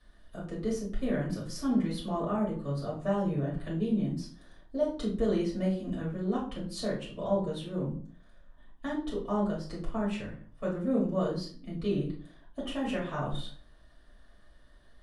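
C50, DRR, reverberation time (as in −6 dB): 6.0 dB, −6.5 dB, 0.45 s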